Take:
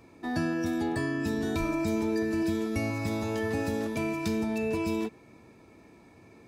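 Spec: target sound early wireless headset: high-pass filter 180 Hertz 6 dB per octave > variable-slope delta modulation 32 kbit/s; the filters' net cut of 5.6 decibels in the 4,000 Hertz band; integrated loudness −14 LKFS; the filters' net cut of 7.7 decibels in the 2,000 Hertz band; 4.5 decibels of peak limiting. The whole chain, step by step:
parametric band 2,000 Hz −8 dB
parametric band 4,000 Hz −5 dB
brickwall limiter −23 dBFS
high-pass filter 180 Hz 6 dB per octave
variable-slope delta modulation 32 kbit/s
level +19.5 dB

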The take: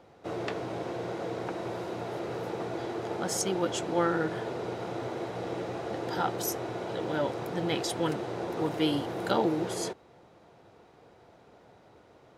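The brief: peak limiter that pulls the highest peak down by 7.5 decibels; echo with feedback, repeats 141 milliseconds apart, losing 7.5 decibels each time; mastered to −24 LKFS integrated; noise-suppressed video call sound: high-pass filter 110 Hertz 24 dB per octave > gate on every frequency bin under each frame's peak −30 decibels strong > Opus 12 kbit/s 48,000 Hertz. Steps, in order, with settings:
brickwall limiter −20.5 dBFS
high-pass filter 110 Hz 24 dB per octave
repeating echo 141 ms, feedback 42%, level −7.5 dB
gate on every frequency bin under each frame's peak −30 dB strong
level +9.5 dB
Opus 12 kbit/s 48,000 Hz

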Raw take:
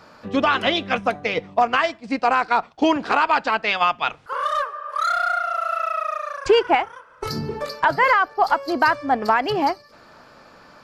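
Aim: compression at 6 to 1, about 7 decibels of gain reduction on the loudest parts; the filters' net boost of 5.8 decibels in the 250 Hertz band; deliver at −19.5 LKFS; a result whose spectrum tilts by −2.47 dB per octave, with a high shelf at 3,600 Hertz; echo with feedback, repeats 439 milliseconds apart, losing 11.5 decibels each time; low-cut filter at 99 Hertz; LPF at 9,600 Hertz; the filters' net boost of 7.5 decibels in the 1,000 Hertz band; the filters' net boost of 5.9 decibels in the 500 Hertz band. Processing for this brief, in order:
high-pass filter 99 Hz
low-pass filter 9,600 Hz
parametric band 250 Hz +5.5 dB
parametric band 500 Hz +3.5 dB
parametric band 1,000 Hz +8.5 dB
high-shelf EQ 3,600 Hz −3.5 dB
downward compressor 6 to 1, threshold −13 dBFS
repeating echo 439 ms, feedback 27%, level −11.5 dB
level −0.5 dB

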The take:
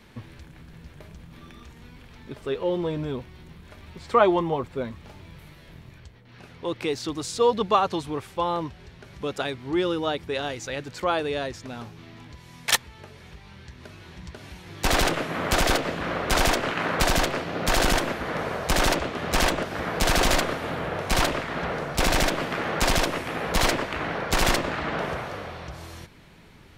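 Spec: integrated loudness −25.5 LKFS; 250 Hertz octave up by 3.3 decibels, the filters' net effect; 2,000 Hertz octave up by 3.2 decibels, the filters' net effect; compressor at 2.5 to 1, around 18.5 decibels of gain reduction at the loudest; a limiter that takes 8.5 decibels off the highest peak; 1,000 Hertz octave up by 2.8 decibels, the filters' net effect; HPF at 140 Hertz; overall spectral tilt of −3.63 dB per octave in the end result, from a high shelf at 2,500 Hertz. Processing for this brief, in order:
high-pass filter 140 Hz
parametric band 250 Hz +5 dB
parametric band 1,000 Hz +3 dB
parametric band 2,000 Hz +6.5 dB
high-shelf EQ 2,500 Hz −8 dB
downward compressor 2.5 to 1, threshold −41 dBFS
level +15 dB
brickwall limiter −13.5 dBFS

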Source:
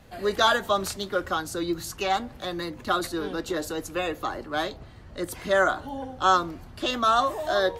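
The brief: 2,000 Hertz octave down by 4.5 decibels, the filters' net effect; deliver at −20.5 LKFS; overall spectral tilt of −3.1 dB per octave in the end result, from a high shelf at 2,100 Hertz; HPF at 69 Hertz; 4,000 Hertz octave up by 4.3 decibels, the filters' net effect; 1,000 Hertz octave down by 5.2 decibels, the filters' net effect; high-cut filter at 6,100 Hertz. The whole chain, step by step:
high-pass filter 69 Hz
low-pass filter 6,100 Hz
parametric band 1,000 Hz −6.5 dB
parametric band 2,000 Hz −6 dB
high-shelf EQ 2,100 Hz +3 dB
parametric band 4,000 Hz +5 dB
level +7.5 dB

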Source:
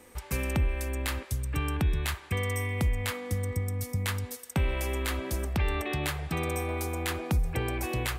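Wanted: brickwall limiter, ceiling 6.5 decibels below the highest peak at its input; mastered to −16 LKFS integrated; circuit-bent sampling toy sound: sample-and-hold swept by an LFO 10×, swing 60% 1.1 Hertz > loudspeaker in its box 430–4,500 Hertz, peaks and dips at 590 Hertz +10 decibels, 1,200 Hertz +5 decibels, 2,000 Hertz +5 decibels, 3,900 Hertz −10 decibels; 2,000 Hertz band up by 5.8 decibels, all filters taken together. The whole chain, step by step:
parametric band 2,000 Hz +3.5 dB
brickwall limiter −23 dBFS
sample-and-hold swept by an LFO 10×, swing 60% 1.1 Hz
loudspeaker in its box 430–4,500 Hz, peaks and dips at 590 Hz +10 dB, 1,200 Hz +5 dB, 2,000 Hz +5 dB, 3,900 Hz −10 dB
level +18.5 dB

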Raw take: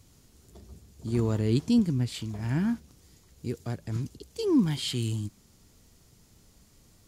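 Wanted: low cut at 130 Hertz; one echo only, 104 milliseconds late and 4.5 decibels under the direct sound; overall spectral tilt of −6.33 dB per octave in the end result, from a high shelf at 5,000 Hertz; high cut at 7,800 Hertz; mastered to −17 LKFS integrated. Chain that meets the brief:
high-pass filter 130 Hz
low-pass filter 7,800 Hz
high-shelf EQ 5,000 Hz +3.5 dB
single-tap delay 104 ms −4.5 dB
level +11.5 dB

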